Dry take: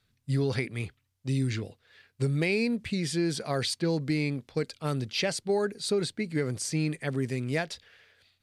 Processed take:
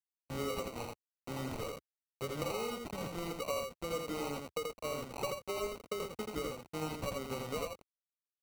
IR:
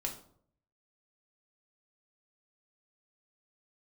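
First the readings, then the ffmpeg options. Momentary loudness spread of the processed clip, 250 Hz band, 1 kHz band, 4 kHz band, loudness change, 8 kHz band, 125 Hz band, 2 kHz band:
7 LU, -13.0 dB, -0.5 dB, -10.0 dB, -10.0 dB, -9.0 dB, -16.0 dB, -11.5 dB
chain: -filter_complex "[0:a]acrossover=split=190|1700[a][b][c];[b]bandreject=f=500:w=16[d];[c]alimiter=level_in=4dB:limit=-24dB:level=0:latency=1:release=139,volume=-4dB[e];[a][d][e]amix=inputs=3:normalize=0,asplit=3[f][g][h];[f]bandpass=f=530:t=q:w=8,volume=0dB[i];[g]bandpass=f=1.84k:t=q:w=8,volume=-6dB[j];[h]bandpass=f=2.48k:t=q:w=8,volume=-9dB[k];[i][j][k]amix=inputs=3:normalize=0,adynamicsmooth=sensitivity=3:basefreq=2.1k,bass=f=250:g=-2,treble=f=4k:g=7,acrusher=bits=8:mix=0:aa=0.000001,highpass=f=71:w=0.5412,highpass=f=71:w=1.3066,equalizer=f=360:w=5.6:g=-14,acompressor=threshold=-47dB:ratio=12,acrusher=samples=26:mix=1:aa=0.000001,aecho=1:1:83:0.668,volume=12dB"

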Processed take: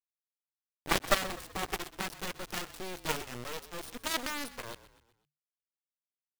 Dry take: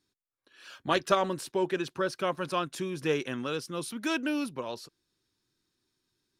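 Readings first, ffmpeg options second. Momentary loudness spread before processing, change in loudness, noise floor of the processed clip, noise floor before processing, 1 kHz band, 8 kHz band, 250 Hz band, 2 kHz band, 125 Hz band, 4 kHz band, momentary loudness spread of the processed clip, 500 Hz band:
10 LU, -4.0 dB, under -85 dBFS, -84 dBFS, -4.5 dB, +3.5 dB, -10.5 dB, -1.0 dB, -5.5 dB, +0.5 dB, 13 LU, -9.0 dB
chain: -filter_complex "[0:a]acrusher=bits=3:dc=4:mix=0:aa=0.000001,aeval=exprs='0.251*(cos(1*acos(clip(val(0)/0.251,-1,1)))-cos(1*PI/2))+0.0126*(cos(3*acos(clip(val(0)/0.251,-1,1)))-cos(3*PI/2))+0.0398*(cos(6*acos(clip(val(0)/0.251,-1,1)))-cos(6*PI/2))+0.0794*(cos(7*acos(clip(val(0)/0.251,-1,1)))-cos(7*PI/2))':c=same,asplit=5[a][b][c][d][e];[b]adelay=126,afreqshift=-37,volume=-16dB[f];[c]adelay=252,afreqshift=-74,volume=-22.7dB[g];[d]adelay=378,afreqshift=-111,volume=-29.5dB[h];[e]adelay=504,afreqshift=-148,volume=-36.2dB[i];[a][f][g][h][i]amix=inputs=5:normalize=0"

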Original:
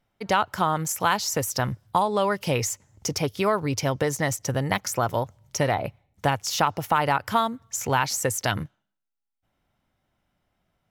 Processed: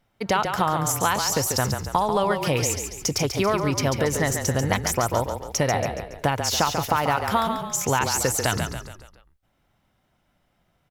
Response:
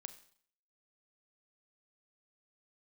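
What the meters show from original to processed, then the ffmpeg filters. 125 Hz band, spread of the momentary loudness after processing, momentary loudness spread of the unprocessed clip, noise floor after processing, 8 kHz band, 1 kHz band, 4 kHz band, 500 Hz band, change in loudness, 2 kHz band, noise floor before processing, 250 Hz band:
+2.5 dB, 4 LU, 6 LU, -69 dBFS, +4.0 dB, +0.5 dB, +3.0 dB, +2.0 dB, +2.0 dB, +1.0 dB, -82 dBFS, +2.5 dB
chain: -filter_complex "[0:a]acompressor=threshold=-27dB:ratio=2,asplit=6[a][b][c][d][e][f];[b]adelay=140,afreqshift=-31,volume=-6.5dB[g];[c]adelay=280,afreqshift=-62,volume=-13.2dB[h];[d]adelay=420,afreqshift=-93,volume=-20dB[i];[e]adelay=560,afreqshift=-124,volume=-26.7dB[j];[f]adelay=700,afreqshift=-155,volume=-33.5dB[k];[a][g][h][i][j][k]amix=inputs=6:normalize=0,volume=5dB"

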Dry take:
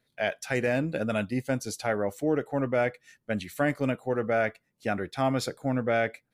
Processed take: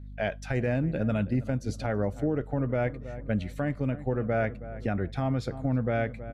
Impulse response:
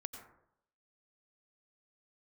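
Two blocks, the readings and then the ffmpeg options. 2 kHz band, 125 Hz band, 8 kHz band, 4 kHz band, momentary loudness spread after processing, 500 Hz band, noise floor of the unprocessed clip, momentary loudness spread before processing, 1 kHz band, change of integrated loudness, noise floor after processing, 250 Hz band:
-5.5 dB, +5.5 dB, under -10 dB, -7.5 dB, 5 LU, -3.0 dB, -77 dBFS, 5 LU, -4.5 dB, -1.0 dB, -42 dBFS, +0.5 dB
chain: -filter_complex "[0:a]aemphasis=mode=reproduction:type=bsi,aeval=exprs='val(0)+0.00631*(sin(2*PI*50*n/s)+sin(2*PI*2*50*n/s)/2+sin(2*PI*3*50*n/s)/3+sin(2*PI*4*50*n/s)/4+sin(2*PI*5*50*n/s)/5)':c=same,lowshelf=f=140:g=4,asplit=2[a][b];[b]adelay=321,lowpass=f=1.4k:p=1,volume=-17dB,asplit=2[c][d];[d]adelay=321,lowpass=f=1.4k:p=1,volume=0.38,asplit=2[e][f];[f]adelay=321,lowpass=f=1.4k:p=1,volume=0.38[g];[a][c][e][g]amix=inputs=4:normalize=0,alimiter=limit=-18.5dB:level=0:latency=1:release=256"

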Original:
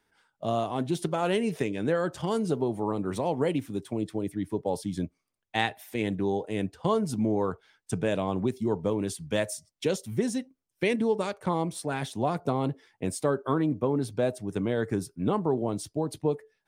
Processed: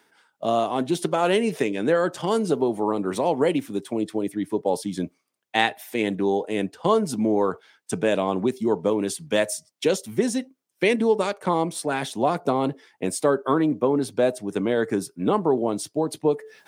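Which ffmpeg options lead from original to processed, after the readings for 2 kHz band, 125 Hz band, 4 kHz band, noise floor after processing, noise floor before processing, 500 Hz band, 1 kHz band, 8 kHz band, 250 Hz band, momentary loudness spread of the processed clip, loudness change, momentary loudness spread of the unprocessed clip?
+6.5 dB, -1.0 dB, +6.5 dB, -74 dBFS, -81 dBFS, +6.5 dB, +6.5 dB, +6.5 dB, +4.5 dB, 6 LU, +5.5 dB, 6 LU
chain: -af "highpass=220,areverse,acompressor=mode=upward:threshold=-43dB:ratio=2.5,areverse,volume=6.5dB"

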